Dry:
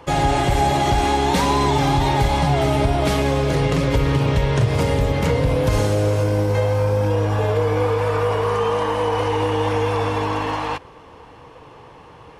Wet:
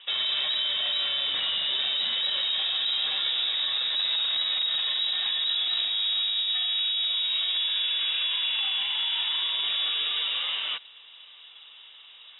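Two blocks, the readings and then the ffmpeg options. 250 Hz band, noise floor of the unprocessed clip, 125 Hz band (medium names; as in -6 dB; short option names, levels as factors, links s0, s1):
under -35 dB, -44 dBFS, under -40 dB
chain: -af "alimiter=limit=0.224:level=0:latency=1:release=14,asoftclip=type=hard:threshold=0.141,lowpass=f=3300:t=q:w=0.5098,lowpass=f=3300:t=q:w=0.6013,lowpass=f=3300:t=q:w=0.9,lowpass=f=3300:t=q:w=2.563,afreqshift=-3900,volume=0.501"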